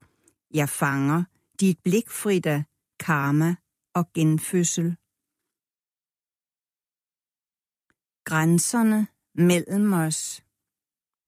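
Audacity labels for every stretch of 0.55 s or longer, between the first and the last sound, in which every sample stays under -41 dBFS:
4.950000	8.260000	silence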